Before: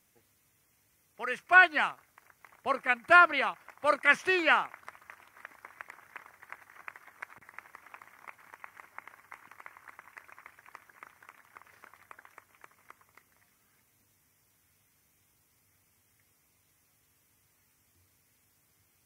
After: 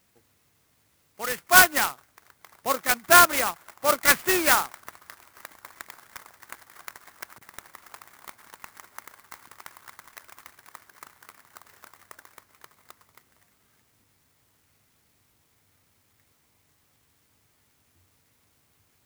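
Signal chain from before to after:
converter with an unsteady clock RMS 0.075 ms
level +4.5 dB

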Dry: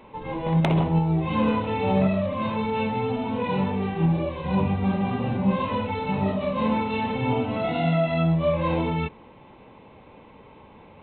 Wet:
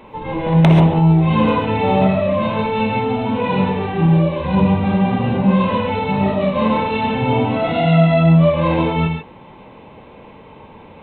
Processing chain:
reverb whose tail is shaped and stops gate 160 ms rising, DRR 4 dB
level +6.5 dB

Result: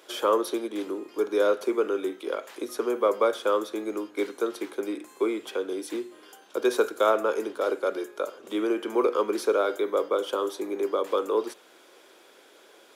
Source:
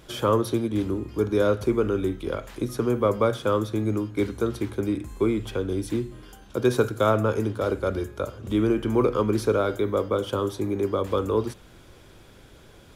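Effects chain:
high-pass filter 350 Hz 24 dB per octave

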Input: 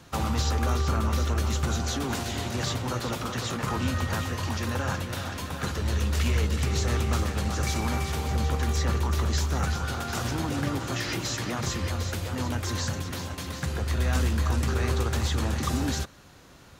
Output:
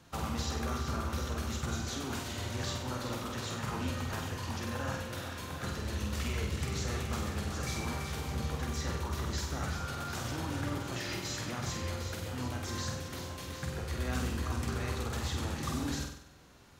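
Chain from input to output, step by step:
flutter between parallel walls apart 8.2 metres, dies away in 0.64 s
level −8.5 dB

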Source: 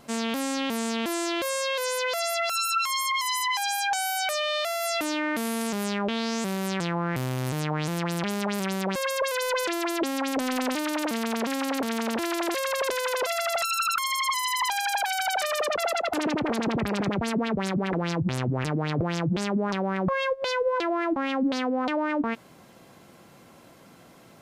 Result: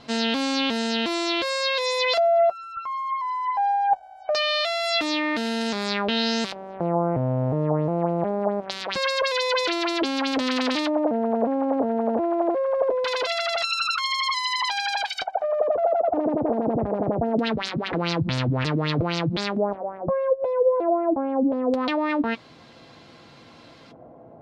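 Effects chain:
auto-filter low-pass square 0.23 Hz 670–4,200 Hz
speech leveller 2 s
notch comb filter 190 Hz
level +2.5 dB

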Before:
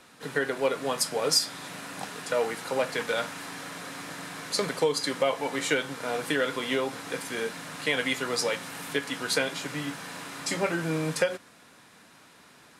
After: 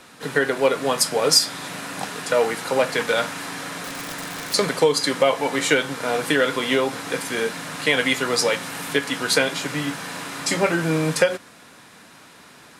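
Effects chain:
0:03.83–0:04.54: wrap-around overflow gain 31 dB
level +7.5 dB

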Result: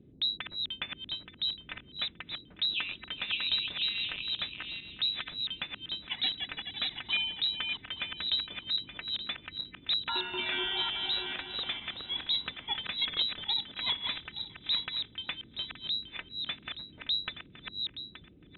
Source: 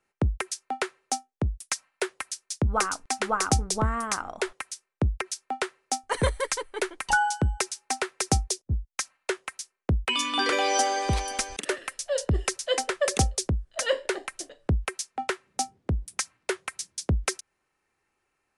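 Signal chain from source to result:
feedback delay that plays each chunk backwards 437 ms, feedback 43%, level −4.5 dB
voice inversion scrambler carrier 3,900 Hz
noise in a band 38–330 Hz −48 dBFS
level −8.5 dB

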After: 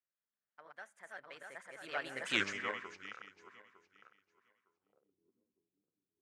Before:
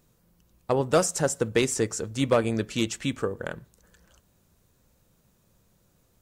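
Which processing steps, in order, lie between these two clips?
feedback delay that plays each chunk backwards 390 ms, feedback 51%, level −1 dB
source passing by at 0:02.36, 56 m/s, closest 3.9 metres
band-pass filter sweep 1,700 Hz → 300 Hz, 0:04.63–0:05.17
level +8.5 dB

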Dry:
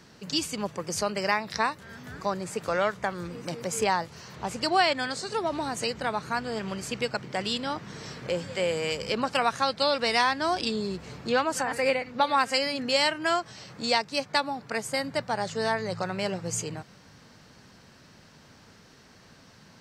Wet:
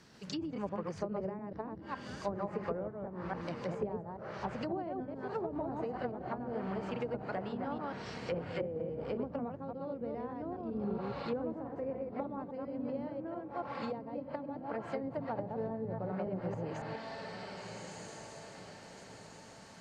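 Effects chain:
delay that plays each chunk backwards 139 ms, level −2 dB
feedback delay with all-pass diffusion 1,409 ms, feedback 43%, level −11.5 dB
treble cut that deepens with the level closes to 360 Hz, closed at −22 dBFS
level −6.5 dB

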